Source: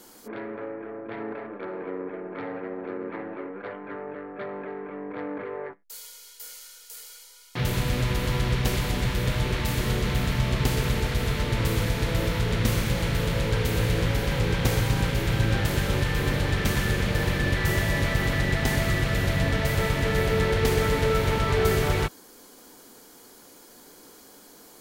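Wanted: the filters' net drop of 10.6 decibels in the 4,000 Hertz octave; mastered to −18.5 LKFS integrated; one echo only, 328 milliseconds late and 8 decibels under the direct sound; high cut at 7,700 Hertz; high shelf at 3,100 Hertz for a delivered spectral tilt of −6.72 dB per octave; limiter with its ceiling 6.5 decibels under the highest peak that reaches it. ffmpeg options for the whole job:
ffmpeg -i in.wav -af "lowpass=7700,highshelf=frequency=3100:gain=-7.5,equalizer=frequency=4000:width_type=o:gain=-8.5,alimiter=limit=-16dB:level=0:latency=1,aecho=1:1:328:0.398,volume=9dB" out.wav

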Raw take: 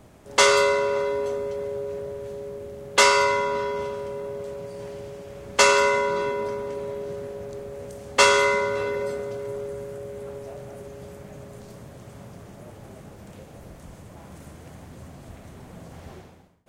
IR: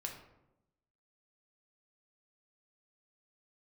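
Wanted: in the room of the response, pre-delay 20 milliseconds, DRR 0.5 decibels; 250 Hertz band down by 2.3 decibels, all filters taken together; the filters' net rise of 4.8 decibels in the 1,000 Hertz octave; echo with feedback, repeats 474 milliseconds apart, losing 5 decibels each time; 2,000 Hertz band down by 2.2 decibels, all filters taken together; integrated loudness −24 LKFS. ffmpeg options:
-filter_complex "[0:a]equalizer=frequency=250:width_type=o:gain=-4.5,equalizer=frequency=1000:width_type=o:gain=6.5,equalizer=frequency=2000:width_type=o:gain=-5.5,aecho=1:1:474|948|1422|1896|2370|2844|3318:0.562|0.315|0.176|0.0988|0.0553|0.031|0.0173,asplit=2[link_01][link_02];[1:a]atrim=start_sample=2205,adelay=20[link_03];[link_02][link_03]afir=irnorm=-1:irlink=0,volume=0.5dB[link_04];[link_01][link_04]amix=inputs=2:normalize=0,volume=-4dB"

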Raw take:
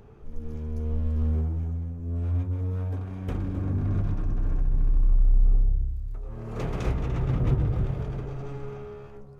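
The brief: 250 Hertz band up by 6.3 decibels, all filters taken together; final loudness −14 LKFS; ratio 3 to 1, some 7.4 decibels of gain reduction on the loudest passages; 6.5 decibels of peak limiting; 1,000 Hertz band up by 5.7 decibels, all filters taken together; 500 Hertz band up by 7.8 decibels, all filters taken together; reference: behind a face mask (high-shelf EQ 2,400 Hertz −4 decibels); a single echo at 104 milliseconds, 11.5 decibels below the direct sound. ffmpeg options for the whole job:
ffmpeg -i in.wav -af "equalizer=frequency=250:width_type=o:gain=6.5,equalizer=frequency=500:width_type=o:gain=6.5,equalizer=frequency=1000:width_type=o:gain=5.5,acompressor=threshold=-25dB:ratio=3,alimiter=limit=-22dB:level=0:latency=1,highshelf=frequency=2400:gain=-4,aecho=1:1:104:0.266,volume=17.5dB" out.wav

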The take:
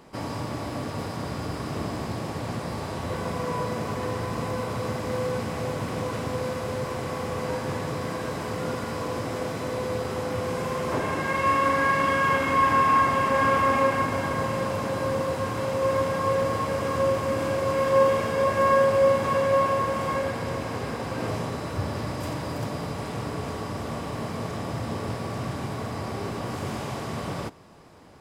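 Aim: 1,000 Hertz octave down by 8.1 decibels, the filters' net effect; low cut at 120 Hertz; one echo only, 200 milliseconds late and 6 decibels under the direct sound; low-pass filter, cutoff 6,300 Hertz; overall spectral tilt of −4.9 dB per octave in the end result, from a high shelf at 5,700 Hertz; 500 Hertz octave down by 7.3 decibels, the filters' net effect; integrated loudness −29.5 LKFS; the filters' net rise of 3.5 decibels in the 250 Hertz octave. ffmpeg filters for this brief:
ffmpeg -i in.wav -af "highpass=120,lowpass=6300,equalizer=frequency=250:width_type=o:gain=7,equalizer=frequency=500:width_type=o:gain=-7.5,equalizer=frequency=1000:width_type=o:gain=-8,highshelf=frequency=5700:gain=8,aecho=1:1:200:0.501,volume=-0.5dB" out.wav

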